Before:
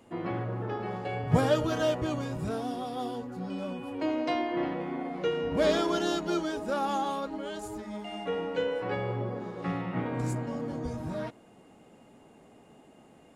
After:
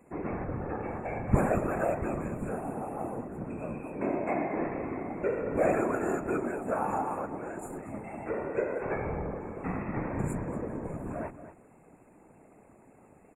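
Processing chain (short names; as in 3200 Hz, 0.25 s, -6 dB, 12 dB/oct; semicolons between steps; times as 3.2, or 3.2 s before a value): whisperiser; outdoor echo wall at 40 m, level -12 dB; FFT band-reject 2700–6900 Hz; gain -1.5 dB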